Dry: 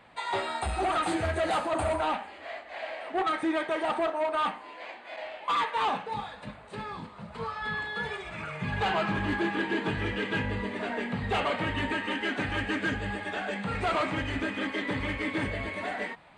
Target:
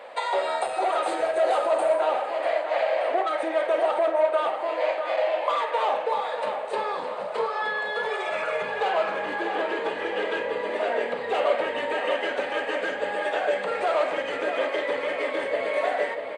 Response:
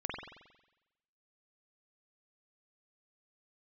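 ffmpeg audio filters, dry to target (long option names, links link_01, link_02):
-filter_complex "[0:a]acompressor=threshold=-36dB:ratio=10,highpass=frequency=530:width_type=q:width=4.9,asplit=2[link_01][link_02];[link_02]adelay=50,volume=-12dB[link_03];[link_01][link_03]amix=inputs=2:normalize=0,asplit=2[link_04][link_05];[link_05]adelay=643,lowpass=frequency=3200:poles=1,volume=-7dB,asplit=2[link_06][link_07];[link_07]adelay=643,lowpass=frequency=3200:poles=1,volume=0.48,asplit=2[link_08][link_09];[link_09]adelay=643,lowpass=frequency=3200:poles=1,volume=0.48,asplit=2[link_10][link_11];[link_11]adelay=643,lowpass=frequency=3200:poles=1,volume=0.48,asplit=2[link_12][link_13];[link_13]adelay=643,lowpass=frequency=3200:poles=1,volume=0.48,asplit=2[link_14][link_15];[link_15]adelay=643,lowpass=frequency=3200:poles=1,volume=0.48[link_16];[link_04][link_06][link_08][link_10][link_12][link_14][link_16]amix=inputs=7:normalize=0,volume=8.5dB"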